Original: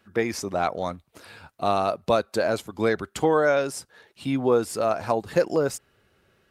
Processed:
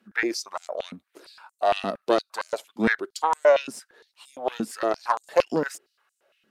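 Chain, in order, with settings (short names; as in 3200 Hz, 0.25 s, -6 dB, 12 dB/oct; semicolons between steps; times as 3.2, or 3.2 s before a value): added harmonics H 2 -6 dB, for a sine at -9 dBFS; stepped high-pass 8.7 Hz 220–7500 Hz; gain -5.5 dB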